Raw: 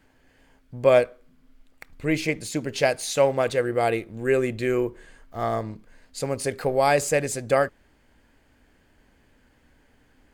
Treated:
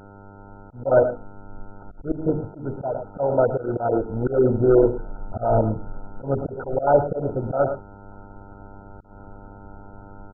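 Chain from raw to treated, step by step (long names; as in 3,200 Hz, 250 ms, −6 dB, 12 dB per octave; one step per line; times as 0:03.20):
spectral magnitudes quantised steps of 15 dB
low-shelf EQ 60 Hz +12 dB
mains-hum notches 50/100/150/200/250/300/350/400/450 Hz
automatic gain control gain up to 10 dB
hum with harmonics 100 Hz, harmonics 32, −42 dBFS −2 dB per octave
linear-phase brick-wall low-pass 1,900 Hz
single-tap delay 109 ms −14 dB
volume swells 181 ms
MP2 8 kbit/s 16,000 Hz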